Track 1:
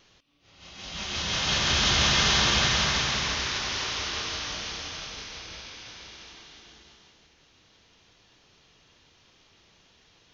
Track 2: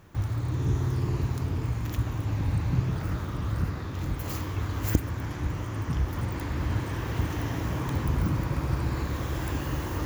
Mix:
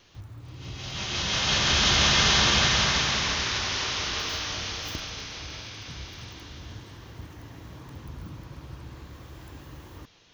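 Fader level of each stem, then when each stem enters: +1.5, −14.0 decibels; 0.00, 0.00 seconds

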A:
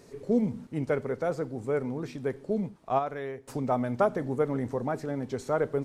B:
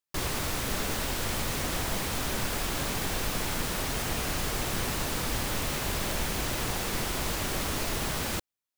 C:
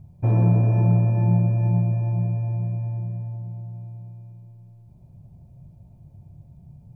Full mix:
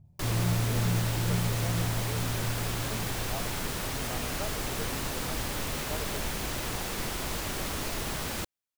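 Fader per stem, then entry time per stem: −14.5, −2.5, −10.5 decibels; 0.40, 0.05, 0.00 seconds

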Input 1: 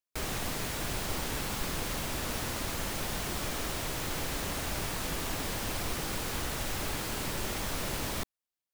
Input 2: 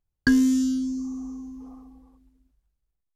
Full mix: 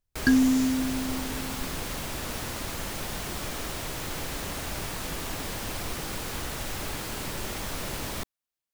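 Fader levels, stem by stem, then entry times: +0.5, −1.5 decibels; 0.00, 0.00 seconds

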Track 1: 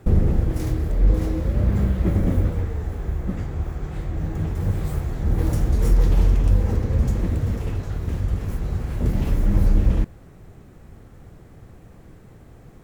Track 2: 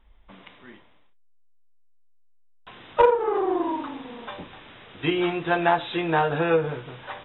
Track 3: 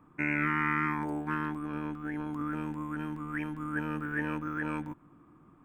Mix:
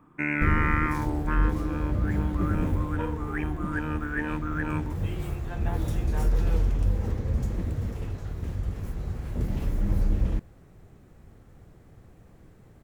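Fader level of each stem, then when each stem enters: −7.0, −19.0, +2.5 decibels; 0.35, 0.00, 0.00 seconds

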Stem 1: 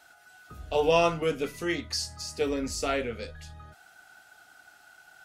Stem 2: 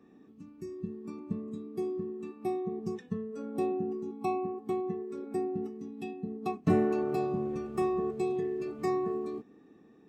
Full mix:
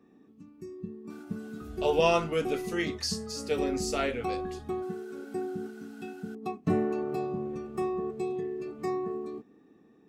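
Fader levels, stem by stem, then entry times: −1.5, −1.5 decibels; 1.10, 0.00 seconds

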